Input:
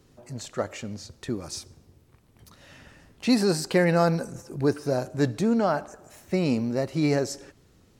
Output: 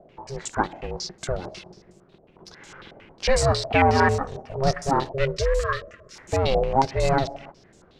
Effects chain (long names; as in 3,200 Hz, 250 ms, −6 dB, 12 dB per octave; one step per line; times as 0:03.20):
one scale factor per block 5 bits
time-frequency box erased 0:05.13–0:06.16, 400–1,300 Hz
ring modulation 270 Hz
in parallel at −5 dB: soft clipping −25 dBFS, distortion −9 dB
on the sum: low-pass on a step sequencer 11 Hz 680–7,400 Hz
level +2 dB